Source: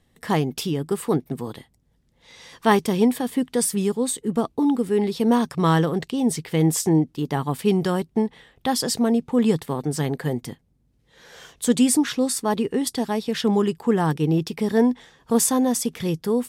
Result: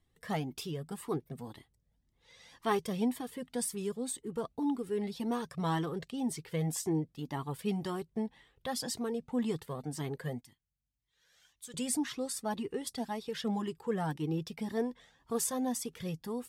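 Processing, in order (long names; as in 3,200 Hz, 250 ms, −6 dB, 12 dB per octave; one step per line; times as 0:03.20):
0:10.41–0:11.74: guitar amp tone stack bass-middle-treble 5-5-5
flanger whose copies keep moving one way rising 1.9 Hz
level −8 dB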